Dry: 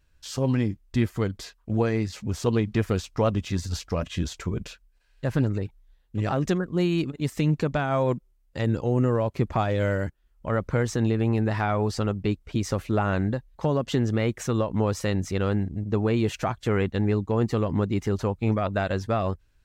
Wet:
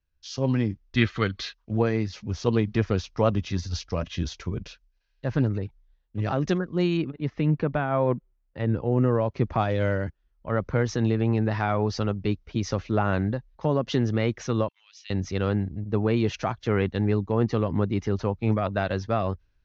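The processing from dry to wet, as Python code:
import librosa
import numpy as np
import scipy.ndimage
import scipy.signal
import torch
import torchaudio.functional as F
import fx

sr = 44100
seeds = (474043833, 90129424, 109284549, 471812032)

y = fx.spec_box(x, sr, start_s=0.96, length_s=0.58, low_hz=1100.0, high_hz=4400.0, gain_db=9)
y = fx.lowpass(y, sr, hz=2500.0, slope=12, at=(6.97, 8.92))
y = fx.ladder_highpass(y, sr, hz=2400.0, resonance_pct=45, at=(14.68, 15.1))
y = scipy.signal.sosfilt(scipy.signal.butter(12, 6300.0, 'lowpass', fs=sr, output='sos'), y)
y = fx.band_widen(y, sr, depth_pct=40)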